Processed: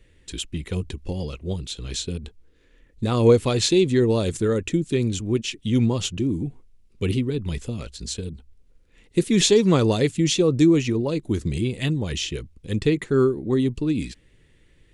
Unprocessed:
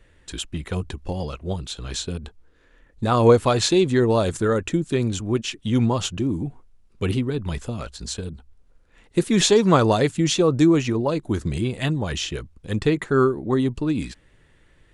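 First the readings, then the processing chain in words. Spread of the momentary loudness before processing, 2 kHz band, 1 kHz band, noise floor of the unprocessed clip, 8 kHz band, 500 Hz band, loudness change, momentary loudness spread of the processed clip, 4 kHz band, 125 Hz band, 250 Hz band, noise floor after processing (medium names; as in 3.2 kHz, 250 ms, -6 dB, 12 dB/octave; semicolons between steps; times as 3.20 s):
14 LU, -2.5 dB, -8.5 dB, -57 dBFS, 0.0 dB, -1.0 dB, -0.5 dB, 14 LU, 0.0 dB, 0.0 dB, 0.0 dB, -58 dBFS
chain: high-order bell 1 kHz -8.5 dB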